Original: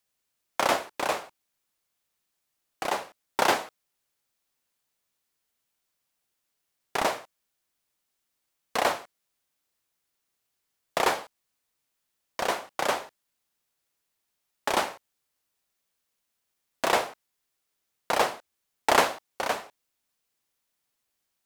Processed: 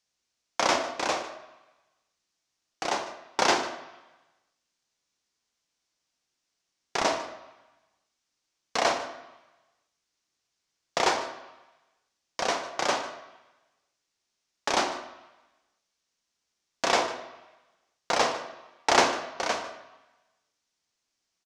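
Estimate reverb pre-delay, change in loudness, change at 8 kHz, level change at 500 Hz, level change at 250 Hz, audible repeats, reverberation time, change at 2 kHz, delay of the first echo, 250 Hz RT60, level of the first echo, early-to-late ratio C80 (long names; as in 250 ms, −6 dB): 3 ms, +0.5 dB, +2.5 dB, 0.0 dB, +1.5 dB, 1, 1.0 s, +0.5 dB, 150 ms, 0.90 s, −17.0 dB, 10.5 dB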